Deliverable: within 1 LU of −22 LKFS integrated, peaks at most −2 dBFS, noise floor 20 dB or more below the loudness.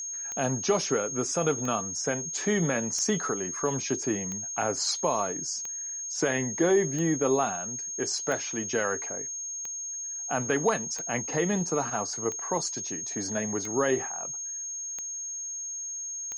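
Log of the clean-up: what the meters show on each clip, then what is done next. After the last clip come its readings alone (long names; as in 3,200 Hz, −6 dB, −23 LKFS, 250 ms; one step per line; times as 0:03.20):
number of clicks 13; interfering tone 6,500 Hz; level of the tone −33 dBFS; integrated loudness −28.5 LKFS; sample peak −13.0 dBFS; target loudness −22.0 LKFS
→ click removal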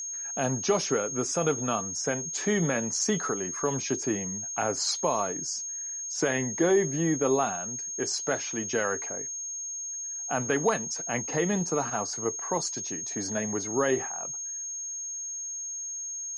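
number of clicks 0; interfering tone 6,500 Hz; level of the tone −33 dBFS
→ notch filter 6,500 Hz, Q 30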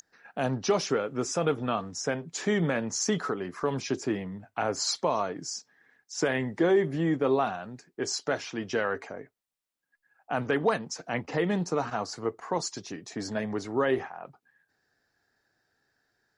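interfering tone none found; integrated loudness −29.5 LKFS; sample peak −13.0 dBFS; target loudness −22.0 LKFS
→ level +7.5 dB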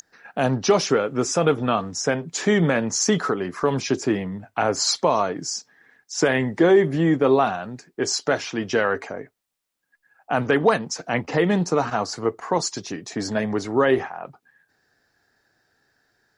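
integrated loudness −22.0 LKFS; sample peak −5.5 dBFS; background noise floor −75 dBFS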